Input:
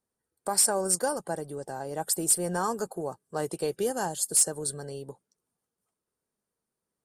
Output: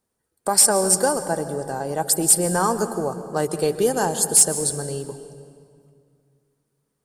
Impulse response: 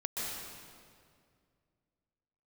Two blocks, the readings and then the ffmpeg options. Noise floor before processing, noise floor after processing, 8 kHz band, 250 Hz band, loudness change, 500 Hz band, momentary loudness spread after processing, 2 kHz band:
under -85 dBFS, -77 dBFS, +8.0 dB, +9.0 dB, +8.0 dB, +8.5 dB, 13 LU, +8.0 dB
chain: -filter_complex "[0:a]asplit=2[s0][s1];[1:a]atrim=start_sample=2205,lowshelf=f=210:g=7[s2];[s1][s2]afir=irnorm=-1:irlink=0,volume=0.224[s3];[s0][s3]amix=inputs=2:normalize=0,volume=2.11"

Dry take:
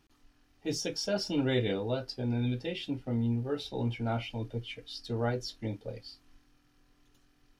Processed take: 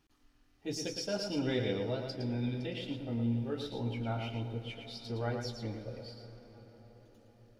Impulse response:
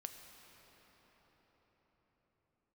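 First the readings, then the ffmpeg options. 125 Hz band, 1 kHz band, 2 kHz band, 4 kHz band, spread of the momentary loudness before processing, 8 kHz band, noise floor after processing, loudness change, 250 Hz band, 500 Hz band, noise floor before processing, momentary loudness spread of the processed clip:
-3.0 dB, -3.0 dB, -3.5 dB, -3.5 dB, 11 LU, -3.5 dB, -67 dBFS, -3.0 dB, -3.0 dB, -3.0 dB, -68 dBFS, 15 LU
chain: -filter_complex "[0:a]asplit=2[s0][s1];[1:a]atrim=start_sample=2205,highshelf=f=8000:g=-4.5,adelay=112[s2];[s1][s2]afir=irnorm=-1:irlink=0,volume=0.944[s3];[s0][s3]amix=inputs=2:normalize=0,volume=0.596"

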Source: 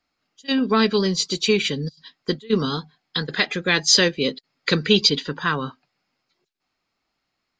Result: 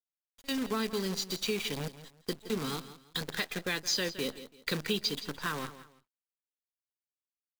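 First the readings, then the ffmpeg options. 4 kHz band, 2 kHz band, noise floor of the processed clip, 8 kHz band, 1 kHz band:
-13.5 dB, -13.0 dB, under -85 dBFS, -12.0 dB, -12.5 dB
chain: -filter_complex "[0:a]acrusher=bits=5:dc=4:mix=0:aa=0.000001,asplit=2[s0][s1];[s1]aecho=0:1:167|334:0.141|0.0367[s2];[s0][s2]amix=inputs=2:normalize=0,acompressor=threshold=0.0562:ratio=2,volume=0.398"

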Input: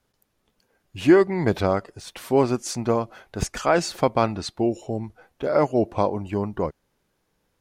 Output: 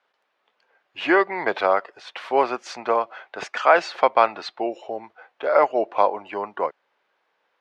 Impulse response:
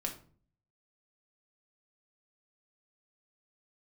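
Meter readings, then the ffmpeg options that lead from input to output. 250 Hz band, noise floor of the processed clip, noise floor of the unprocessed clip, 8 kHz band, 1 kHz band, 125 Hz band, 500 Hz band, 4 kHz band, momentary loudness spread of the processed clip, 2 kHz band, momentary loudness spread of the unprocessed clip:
-8.5 dB, -72 dBFS, -73 dBFS, under -10 dB, +6.0 dB, under -20 dB, 0.0 dB, 0.0 dB, 16 LU, +7.0 dB, 14 LU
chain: -filter_complex "[0:a]highpass=420,lowpass=7000,acrossover=split=560 3600:gain=0.251 1 0.0794[s0][s1][s2];[s0][s1][s2]amix=inputs=3:normalize=0,volume=2.37"

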